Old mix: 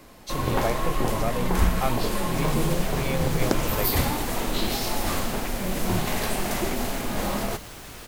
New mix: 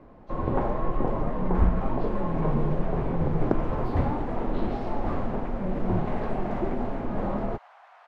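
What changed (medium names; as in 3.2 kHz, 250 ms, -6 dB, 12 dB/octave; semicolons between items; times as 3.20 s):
speech -8.5 dB; second sound: add elliptic high-pass 710 Hz, stop band 60 dB; master: add low-pass 1 kHz 12 dB/octave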